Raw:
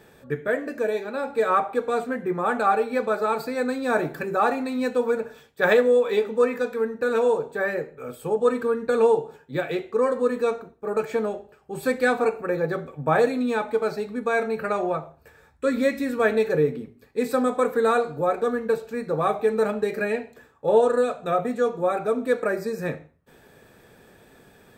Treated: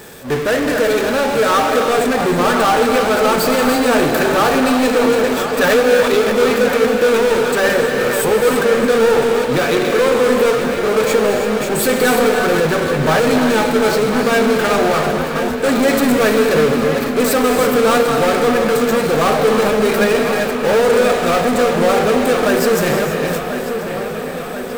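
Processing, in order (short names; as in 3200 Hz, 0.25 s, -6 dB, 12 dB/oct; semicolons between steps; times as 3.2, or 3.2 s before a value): reverse delay 0.316 s, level -13.5 dB; gate -43 dBFS, range -35 dB; tone controls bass -2 dB, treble +7 dB; power-law curve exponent 0.35; on a send: dark delay 1.038 s, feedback 68%, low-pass 3800 Hz, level -9.5 dB; on the sum: non-linear reverb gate 0.36 s rising, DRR 5.5 dB; gain -1.5 dB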